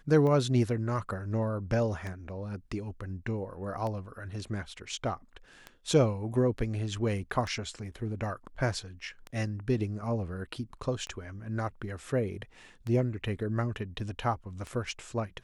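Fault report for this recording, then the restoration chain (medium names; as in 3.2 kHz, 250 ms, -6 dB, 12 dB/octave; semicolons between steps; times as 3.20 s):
tick 33 1/3 rpm -24 dBFS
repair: de-click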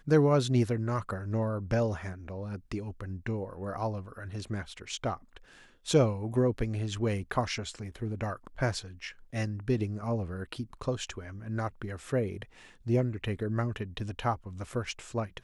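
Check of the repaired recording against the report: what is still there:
nothing left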